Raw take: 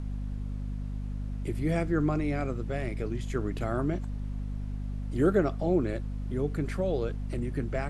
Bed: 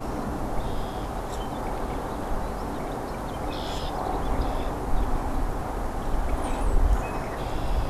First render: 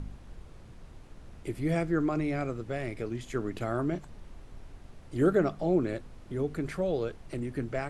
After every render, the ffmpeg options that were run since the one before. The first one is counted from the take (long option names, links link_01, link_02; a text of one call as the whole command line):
ffmpeg -i in.wav -af "bandreject=frequency=50:width_type=h:width=4,bandreject=frequency=100:width_type=h:width=4,bandreject=frequency=150:width_type=h:width=4,bandreject=frequency=200:width_type=h:width=4,bandreject=frequency=250:width_type=h:width=4" out.wav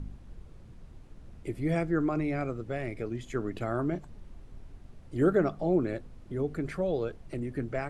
ffmpeg -i in.wav -af "afftdn=noise_reduction=6:noise_floor=-50" out.wav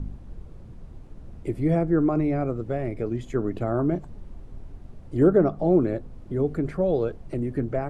ffmpeg -i in.wav -filter_complex "[0:a]acrossover=split=1100[link_01][link_02];[link_01]acontrast=78[link_03];[link_02]alimiter=level_in=14dB:limit=-24dB:level=0:latency=1:release=232,volume=-14dB[link_04];[link_03][link_04]amix=inputs=2:normalize=0" out.wav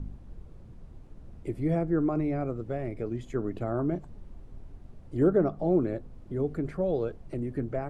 ffmpeg -i in.wav -af "volume=-5dB" out.wav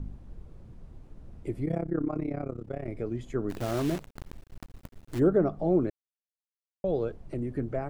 ffmpeg -i in.wav -filter_complex "[0:a]asettb=1/sr,asplit=3[link_01][link_02][link_03];[link_01]atrim=end=1.654[link_04];[link_02]atrim=start=1.65:end=2.88,asetpts=PTS-STARTPTS,afade=type=in:duration=0.004:curve=qsin,afade=type=out:start_time=1.226:duration=0.004:curve=qsin,tremolo=f=33:d=0.889[link_05];[link_03]atrim=start=2.876[link_06];[link_04][link_05]acrossfade=duration=0.004:curve1=hsin:curve2=qsin[link_07];[link_07][link_06]acrossfade=duration=0.004:curve1=qsin:curve2=hsin,asplit=3[link_08][link_09][link_10];[link_08]afade=type=out:start_time=3.49:duration=0.02[link_11];[link_09]acrusher=bits=7:dc=4:mix=0:aa=0.000001,afade=type=in:start_time=3.49:duration=0.02,afade=type=out:start_time=5.18:duration=0.02[link_12];[link_10]afade=type=in:start_time=5.18:duration=0.02[link_13];[link_11][link_12][link_13]amix=inputs=3:normalize=0,asplit=3[link_14][link_15][link_16];[link_14]atrim=end=5.9,asetpts=PTS-STARTPTS,afade=type=out:start_time=5.896:duration=0.004:curve=hsin[link_17];[link_15]atrim=start=5.9:end=6.84,asetpts=PTS-STARTPTS,volume=0[link_18];[link_16]atrim=start=6.84,asetpts=PTS-STARTPTS,afade=type=in:duration=0.004:curve=hsin[link_19];[link_17][link_18][link_19]concat=n=3:v=0:a=1" out.wav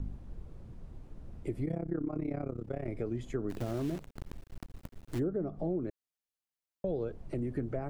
ffmpeg -i in.wav -filter_complex "[0:a]acrossover=split=510[link_01][link_02];[link_02]alimiter=level_in=9dB:limit=-24dB:level=0:latency=1:release=190,volume=-9dB[link_03];[link_01][link_03]amix=inputs=2:normalize=0,acompressor=threshold=-30dB:ratio=6" out.wav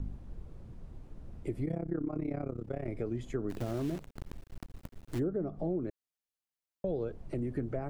ffmpeg -i in.wav -af anull out.wav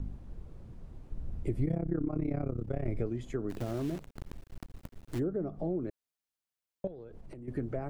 ffmpeg -i in.wav -filter_complex "[0:a]asettb=1/sr,asplit=3[link_01][link_02][link_03];[link_01]atrim=end=1.124[link_04];[link_02]atrim=start=1.12:end=3.07,asetpts=PTS-STARTPTS,afade=type=in:duration=0.004:curve=qsin,afade=type=out:start_time=1.946:duration=0.004:curve=qsin,lowshelf=frequency=140:gain=10[link_05];[link_03]atrim=start=3.066[link_06];[link_04][link_05]acrossfade=duration=0.004:curve1=hsin:curve2=qsin[link_07];[link_07][link_06]acrossfade=duration=0.004:curve1=qsin:curve2=hsin,asettb=1/sr,asplit=3[link_08][link_09][link_10];[link_08]atrim=end=6.874[link_11];[link_09]atrim=start=6.87:end=7.48,asetpts=PTS-STARTPTS,afade=type=in:duration=0.004:curve=qsin,afade=type=out:start_time=0.606:duration=0.004:curve=qsin,acompressor=threshold=-42dB:ratio=16:attack=3.2:release=140:knee=1:detection=peak[link_12];[link_10]atrim=start=7.476[link_13];[link_11][link_12]acrossfade=duration=0.004:curve1=hsin:curve2=qsin[link_14];[link_14][link_13]acrossfade=duration=0.004:curve1=qsin:curve2=hsin" out.wav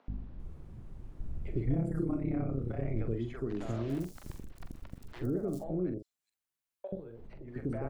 ffmpeg -i in.wav -filter_complex "[0:a]asplit=2[link_01][link_02];[link_02]adelay=44,volume=-8dB[link_03];[link_01][link_03]amix=inputs=2:normalize=0,acrossover=split=550|4800[link_04][link_05][link_06];[link_04]adelay=80[link_07];[link_06]adelay=400[link_08];[link_07][link_05][link_08]amix=inputs=3:normalize=0" out.wav